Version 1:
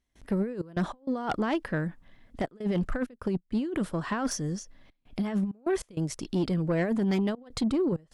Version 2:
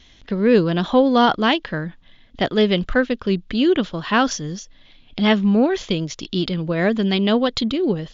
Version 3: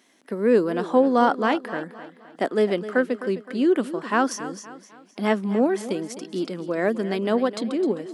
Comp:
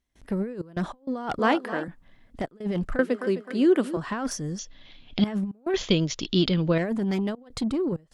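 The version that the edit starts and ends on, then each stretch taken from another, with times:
1
1.39–1.88 from 3
2.99–3.97 from 3
4.59–5.24 from 2
5.74–6.78 from 2

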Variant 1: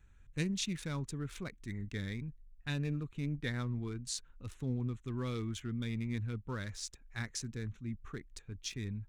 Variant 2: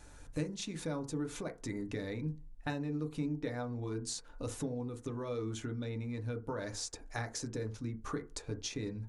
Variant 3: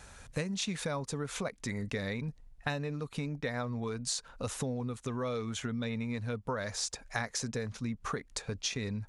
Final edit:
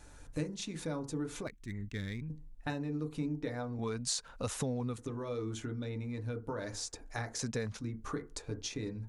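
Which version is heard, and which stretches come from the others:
2
1.47–2.3 from 1
3.79–4.98 from 3
7.39–7.79 from 3

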